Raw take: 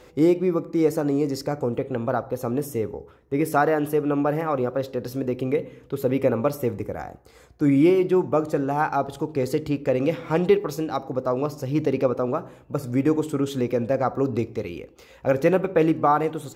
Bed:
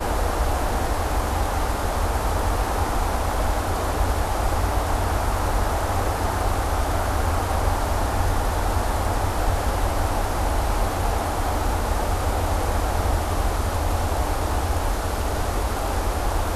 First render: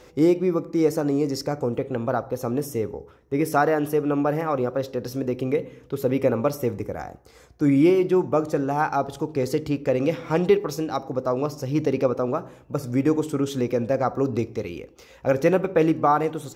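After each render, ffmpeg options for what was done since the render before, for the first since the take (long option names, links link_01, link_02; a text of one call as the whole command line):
ffmpeg -i in.wav -af "equalizer=frequency=5700:width=4.1:gain=6" out.wav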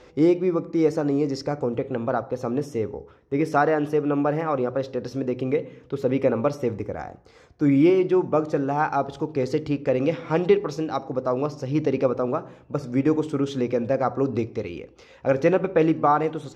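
ffmpeg -i in.wav -af "lowpass=4900,bandreject=frequency=60:width_type=h:width=6,bandreject=frequency=120:width_type=h:width=6,bandreject=frequency=180:width_type=h:width=6" out.wav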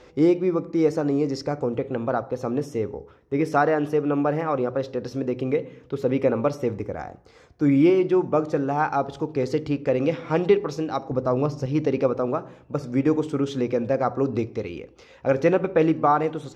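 ffmpeg -i in.wav -filter_complex "[0:a]asettb=1/sr,asplit=3[link_01][link_02][link_03];[link_01]atrim=end=11.114[link_04];[link_02]atrim=start=11.11:end=11.66,asetpts=PTS-STARTPTS,afade=type=in:duration=0.004:curve=qsin,afade=type=out:start_time=0.546:duration=0.004:curve=qsin,lowshelf=frequency=160:gain=11[link_05];[link_03]atrim=start=11.656[link_06];[link_04][link_05]acrossfade=duration=0.004:curve1=hsin:curve2=qsin[link_07];[link_07][link_06]acrossfade=duration=0.004:curve1=qsin:curve2=hsin" out.wav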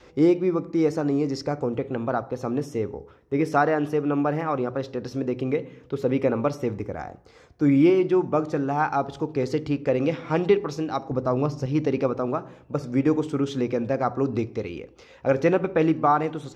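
ffmpeg -i in.wav -af "adynamicequalizer=threshold=0.0158:dfrequency=510:dqfactor=3.2:tfrequency=510:tqfactor=3.2:attack=5:release=100:ratio=0.375:range=2.5:mode=cutabove:tftype=bell" out.wav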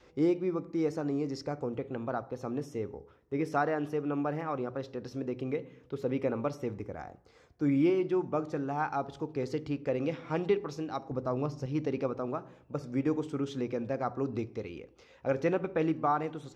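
ffmpeg -i in.wav -af "volume=-8.5dB" out.wav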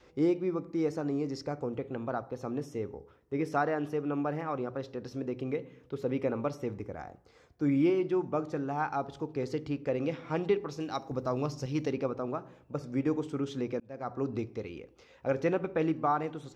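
ffmpeg -i in.wav -filter_complex "[0:a]asettb=1/sr,asplit=3[link_01][link_02][link_03];[link_01]atrim=end=10.804[link_04];[link_02]atrim=start=10.8:end=11.92,asetpts=PTS-STARTPTS,afade=type=in:duration=0.004:curve=qsin,afade=type=out:start_time=1.116:duration=0.004:curve=qsin,highshelf=frequency=2700:gain=10[link_05];[link_03]atrim=start=11.916[link_06];[link_04][link_05]acrossfade=duration=0.004:curve1=hsin:curve2=qsin[link_07];[link_07][link_06]acrossfade=duration=0.004:curve1=qsin:curve2=hsin,asplit=2[link_08][link_09];[link_08]atrim=end=13.8,asetpts=PTS-STARTPTS,afade=type=out:start_time=13.796:duration=0.004:curve=hsin[link_10];[link_09]atrim=start=13.8,asetpts=PTS-STARTPTS,afade=type=in:duration=0.42[link_11];[link_10][link_11]concat=n=2:v=0:a=1" out.wav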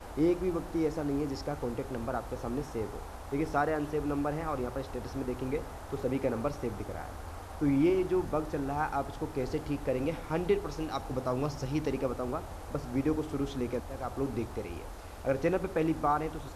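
ffmpeg -i in.wav -i bed.wav -filter_complex "[1:a]volume=-20.5dB[link_01];[0:a][link_01]amix=inputs=2:normalize=0" out.wav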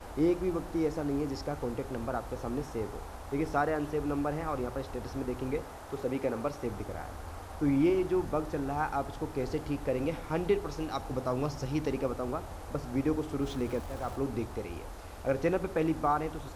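ffmpeg -i in.wav -filter_complex "[0:a]asettb=1/sr,asplit=3[link_01][link_02][link_03];[link_01]atrim=end=5.614[link_04];[link_02]atrim=start=5.61:end=6.65,asetpts=PTS-STARTPTS,afade=type=in:duration=0.004:curve=qsin,afade=type=out:start_time=1.036:duration=0.004:curve=qsin,lowshelf=frequency=150:gain=-7[link_05];[link_03]atrim=start=6.646[link_06];[link_04][link_05]acrossfade=duration=0.004:curve1=hsin:curve2=qsin[link_07];[link_07][link_06]acrossfade=duration=0.004:curve1=qsin:curve2=hsin,asettb=1/sr,asplit=3[link_08][link_09][link_10];[link_08]atrim=end=13.424[link_11];[link_09]atrim=start=13.42:end=14.16,asetpts=PTS-STARTPTS,afade=type=in:duration=0.004:curve=qsin,afade=type=out:start_time=0.736:duration=0.004:curve=qsin,aeval=exprs='val(0)+0.5*0.00531*sgn(val(0))':channel_layout=same[link_12];[link_10]atrim=start=14.156[link_13];[link_11][link_12]acrossfade=duration=0.004:curve1=hsin:curve2=qsin[link_14];[link_14][link_13]acrossfade=duration=0.004:curve1=qsin:curve2=hsin" out.wav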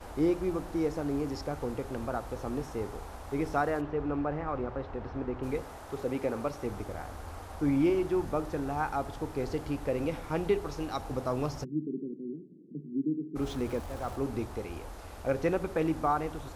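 ffmpeg -i in.wav -filter_complex "[0:a]asplit=3[link_01][link_02][link_03];[link_01]afade=type=out:start_time=3.8:duration=0.02[link_04];[link_02]lowpass=2400,afade=type=in:start_time=3.8:duration=0.02,afade=type=out:start_time=5.42:duration=0.02[link_05];[link_03]afade=type=in:start_time=5.42:duration=0.02[link_06];[link_04][link_05][link_06]amix=inputs=3:normalize=0,asplit=3[link_07][link_08][link_09];[link_07]afade=type=out:start_time=11.63:duration=0.02[link_10];[link_08]asuperpass=centerf=240:order=12:qfactor=1,afade=type=in:start_time=11.63:duration=0.02,afade=type=out:start_time=13.35:duration=0.02[link_11];[link_09]afade=type=in:start_time=13.35:duration=0.02[link_12];[link_10][link_11][link_12]amix=inputs=3:normalize=0" out.wav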